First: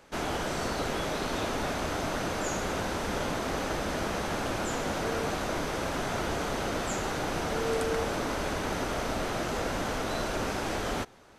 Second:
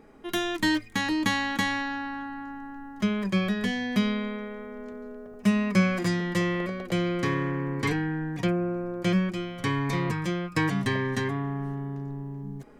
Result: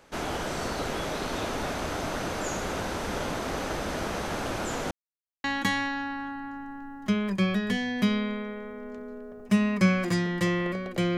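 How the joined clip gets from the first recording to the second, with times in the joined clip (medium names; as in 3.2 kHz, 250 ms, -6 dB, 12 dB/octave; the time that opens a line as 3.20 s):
first
4.91–5.44 s: mute
5.44 s: go over to second from 1.38 s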